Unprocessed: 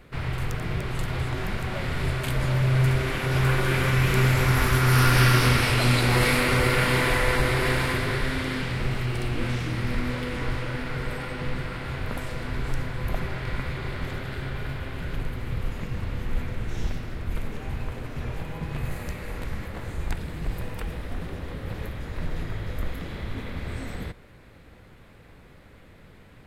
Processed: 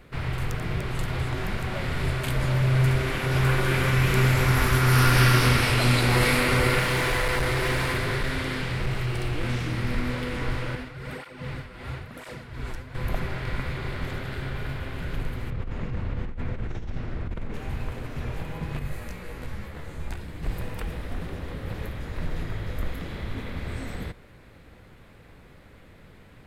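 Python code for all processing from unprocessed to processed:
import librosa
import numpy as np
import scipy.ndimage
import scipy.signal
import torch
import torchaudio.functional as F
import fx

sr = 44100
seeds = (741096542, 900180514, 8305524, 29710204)

y = fx.chain(x, sr, fx.notch(hz=240.0, q=6.9),
    fx.clip_hard(threshold_db=-20.5), at=(6.79, 9.44))
y = fx.chain(y, sr, fx.tremolo(hz=2.6, depth=0.62),
    fx.flanger_cancel(hz=1.0, depth_ms=7.6), at=(10.75, 12.95))
y = fx.chain(y, sr, fx.lowpass(hz=7700.0, slope=12),
    fx.high_shelf(hz=2700.0, db=-10.0),
    fx.over_compress(threshold_db=-29.0, ratio=-1.0), at=(15.5, 17.54))
y = fx.chain(y, sr, fx.room_flutter(wall_m=11.7, rt60_s=0.25),
    fx.detune_double(cents=11), at=(18.79, 20.43))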